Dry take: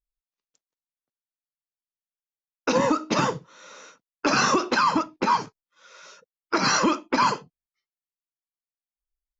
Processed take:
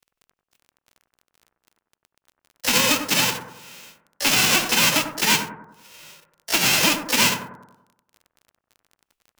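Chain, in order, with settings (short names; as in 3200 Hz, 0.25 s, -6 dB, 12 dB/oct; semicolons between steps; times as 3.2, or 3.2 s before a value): spectral whitening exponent 0.1; bell 2700 Hz +9 dB 0.58 oct; harmoniser +12 st -6 dB; frequency shift -14 Hz; crackle 27/s -38 dBFS; analogue delay 95 ms, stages 1024, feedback 49%, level -8 dB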